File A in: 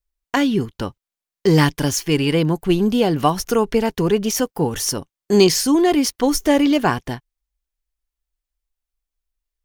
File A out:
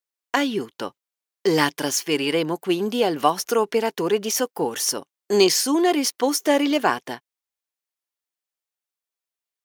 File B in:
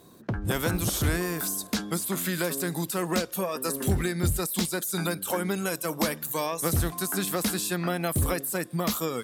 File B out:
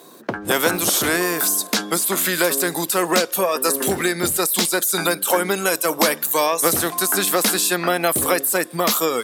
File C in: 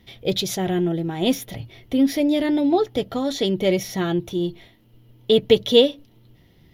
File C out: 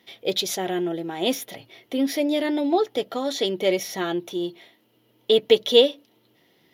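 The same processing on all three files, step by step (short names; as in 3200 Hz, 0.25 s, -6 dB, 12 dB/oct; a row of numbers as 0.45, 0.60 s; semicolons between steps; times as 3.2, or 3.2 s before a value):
HPF 350 Hz 12 dB/oct; normalise peaks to -2 dBFS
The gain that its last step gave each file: -1.0, +11.5, 0.0 dB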